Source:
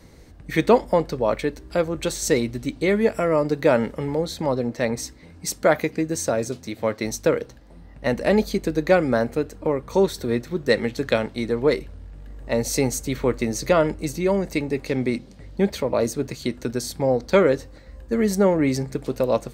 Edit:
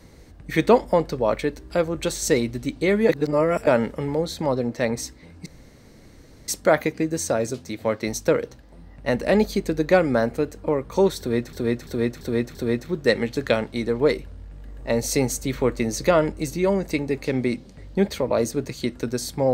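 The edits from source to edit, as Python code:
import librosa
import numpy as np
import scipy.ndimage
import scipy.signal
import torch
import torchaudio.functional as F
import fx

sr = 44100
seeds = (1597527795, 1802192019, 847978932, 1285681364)

y = fx.edit(x, sr, fx.reverse_span(start_s=3.09, length_s=0.58),
    fx.insert_room_tone(at_s=5.46, length_s=1.02),
    fx.repeat(start_s=10.17, length_s=0.34, count=5), tone=tone)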